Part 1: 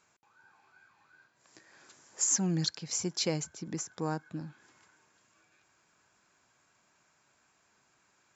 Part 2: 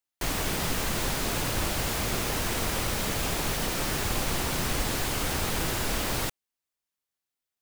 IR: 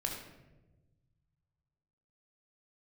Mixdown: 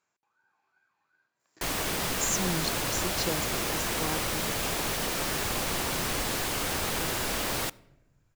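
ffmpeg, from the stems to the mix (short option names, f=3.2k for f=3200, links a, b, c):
-filter_complex "[0:a]highshelf=f=2.5k:g=-3,agate=range=-10dB:threshold=-59dB:ratio=16:detection=peak,volume=0.5dB[a];[1:a]adelay=1400,volume=-0.5dB,asplit=2[b][c];[c]volume=-21dB[d];[2:a]atrim=start_sample=2205[e];[d][e]afir=irnorm=-1:irlink=0[f];[a][b][f]amix=inputs=3:normalize=0,lowshelf=f=140:g=-8.5"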